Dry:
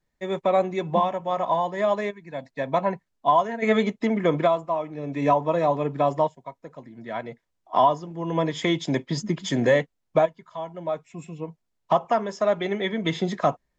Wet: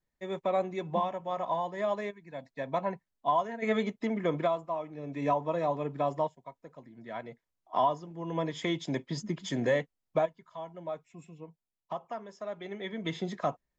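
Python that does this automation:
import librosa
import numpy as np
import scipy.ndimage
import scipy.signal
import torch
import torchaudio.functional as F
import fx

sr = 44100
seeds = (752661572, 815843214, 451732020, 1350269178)

y = fx.gain(x, sr, db=fx.line((10.74, -8.0), (11.94, -16.5), (12.5, -16.5), (13.04, -9.0)))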